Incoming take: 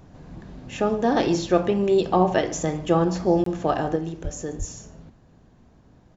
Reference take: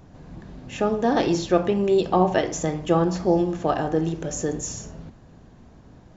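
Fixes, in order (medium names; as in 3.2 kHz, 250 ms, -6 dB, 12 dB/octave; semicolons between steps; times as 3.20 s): 4.23–4.35 s: high-pass 140 Hz 24 dB/octave; 4.58–4.70 s: high-pass 140 Hz 24 dB/octave; interpolate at 3.44 s, 23 ms; inverse comb 144 ms -23.5 dB; 3.96 s: gain correction +5.5 dB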